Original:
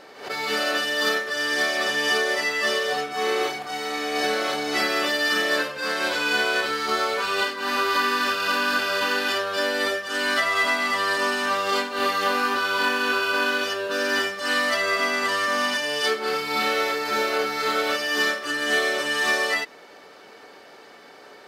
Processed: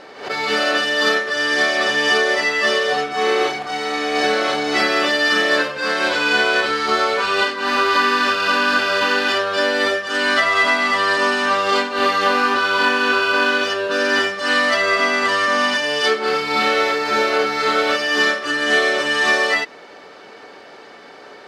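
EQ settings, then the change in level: air absorption 59 m; +6.5 dB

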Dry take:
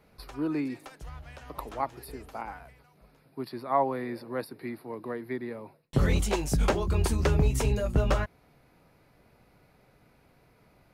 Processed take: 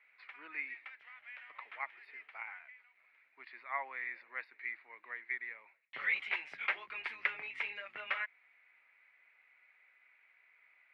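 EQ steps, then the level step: ladder band-pass 2300 Hz, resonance 70%; air absorption 490 m; +14.0 dB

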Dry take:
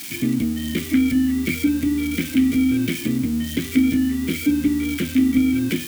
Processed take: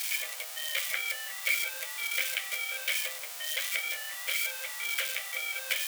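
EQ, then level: brick-wall FIR high-pass 490 Hz; 0.0 dB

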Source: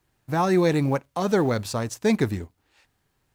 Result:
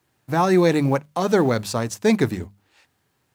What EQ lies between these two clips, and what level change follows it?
HPF 88 Hz; notches 50/100/150/200 Hz; +3.5 dB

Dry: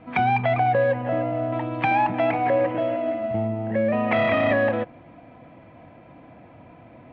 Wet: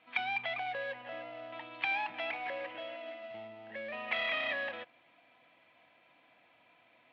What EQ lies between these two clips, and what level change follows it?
band-pass 3700 Hz, Q 1.6; 0.0 dB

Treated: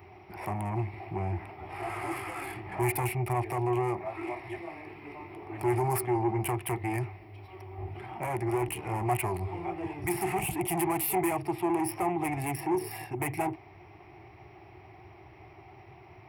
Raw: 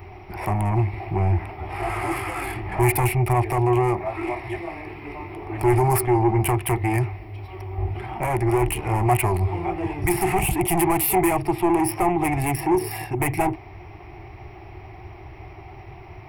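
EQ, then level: HPF 110 Hz 12 dB/oct; -8.5 dB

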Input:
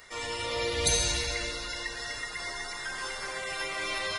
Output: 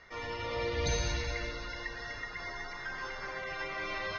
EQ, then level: rippled Chebyshev low-pass 6500 Hz, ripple 3 dB; tone controls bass +4 dB, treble -1 dB; high shelf 3200 Hz -12 dB; 0.0 dB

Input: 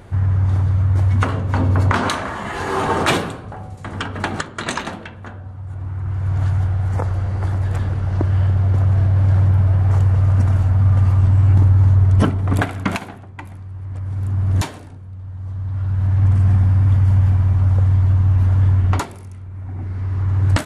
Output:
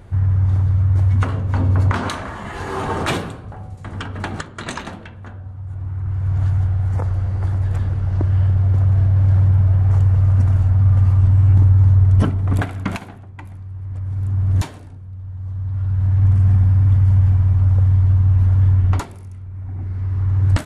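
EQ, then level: low shelf 130 Hz +8.5 dB; -5.0 dB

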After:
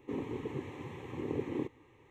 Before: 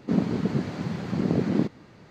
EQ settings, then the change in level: fixed phaser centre 970 Hz, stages 8; -6.5 dB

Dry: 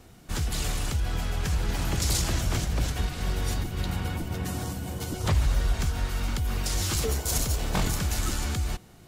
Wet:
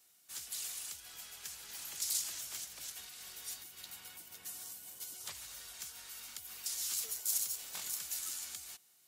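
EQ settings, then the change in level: differentiator; -5.0 dB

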